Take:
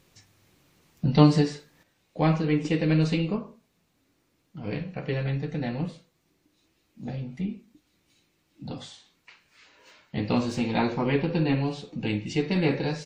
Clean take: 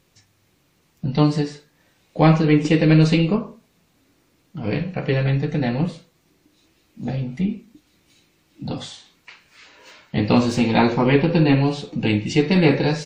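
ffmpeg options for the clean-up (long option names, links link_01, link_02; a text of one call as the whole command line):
ffmpeg -i in.wav -af "asetnsamples=nb_out_samples=441:pad=0,asendcmd='1.83 volume volume 8.5dB',volume=0dB" out.wav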